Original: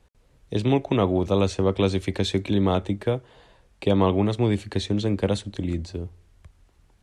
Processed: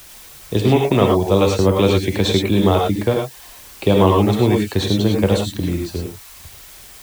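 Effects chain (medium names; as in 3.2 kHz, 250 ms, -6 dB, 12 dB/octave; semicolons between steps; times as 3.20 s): word length cut 8-bit, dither triangular; reverb removal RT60 0.54 s; gated-style reverb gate 130 ms rising, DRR 0.5 dB; trim +6 dB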